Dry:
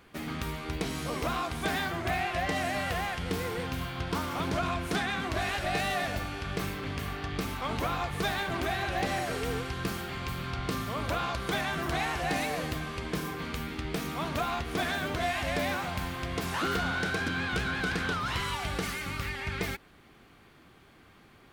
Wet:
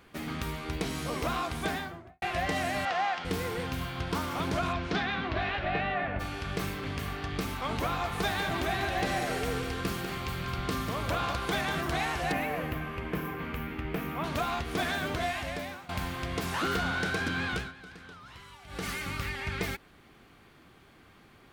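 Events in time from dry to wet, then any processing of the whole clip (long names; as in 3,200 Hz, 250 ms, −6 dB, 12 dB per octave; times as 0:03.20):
0:01.56–0:02.22: fade out and dull
0:02.85–0:03.25: loudspeaker in its box 340–5,900 Hz, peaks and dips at 450 Hz −8 dB, 770 Hz +8 dB, 1,300 Hz +4 dB
0:04.72–0:06.19: low-pass filter 6,000 Hz → 2,300 Hz 24 dB per octave
0:07.85–0:11.81: single-tap delay 195 ms −7.5 dB
0:12.32–0:14.24: flat-topped bell 5,900 Hz −14 dB
0:15.14–0:15.89: fade out, to −18 dB
0:17.50–0:18.90: duck −17.5 dB, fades 0.23 s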